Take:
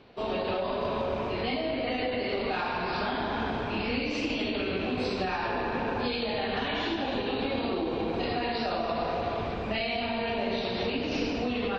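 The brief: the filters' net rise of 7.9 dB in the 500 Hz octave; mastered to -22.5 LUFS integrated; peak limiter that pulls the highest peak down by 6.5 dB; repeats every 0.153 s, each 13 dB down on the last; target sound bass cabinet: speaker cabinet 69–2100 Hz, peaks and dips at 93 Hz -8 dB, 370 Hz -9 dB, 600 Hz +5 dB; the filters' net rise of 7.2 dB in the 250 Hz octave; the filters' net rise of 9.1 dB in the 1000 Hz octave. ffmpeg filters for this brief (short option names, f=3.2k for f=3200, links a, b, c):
-af "equalizer=f=250:t=o:g=8.5,equalizer=f=500:t=o:g=4,equalizer=f=1k:t=o:g=9,alimiter=limit=-17dB:level=0:latency=1,highpass=f=69:w=0.5412,highpass=f=69:w=1.3066,equalizer=f=93:t=q:w=4:g=-8,equalizer=f=370:t=q:w=4:g=-9,equalizer=f=600:t=q:w=4:g=5,lowpass=f=2.1k:w=0.5412,lowpass=f=2.1k:w=1.3066,aecho=1:1:153|306|459:0.224|0.0493|0.0108,volume=3.5dB"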